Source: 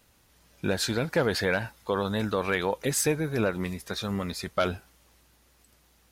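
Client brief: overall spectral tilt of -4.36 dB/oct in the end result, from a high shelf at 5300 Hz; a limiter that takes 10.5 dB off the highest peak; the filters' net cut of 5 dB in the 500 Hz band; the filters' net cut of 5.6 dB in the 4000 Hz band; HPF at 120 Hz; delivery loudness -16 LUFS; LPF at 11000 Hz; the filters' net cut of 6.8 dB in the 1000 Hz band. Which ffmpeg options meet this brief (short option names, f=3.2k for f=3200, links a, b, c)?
-af "highpass=120,lowpass=11k,equalizer=f=500:t=o:g=-4,equalizer=f=1k:t=o:g=-8,equalizer=f=4k:t=o:g=-8.5,highshelf=f=5.3k:g=5,volume=20.5dB,alimiter=limit=-4.5dB:level=0:latency=1"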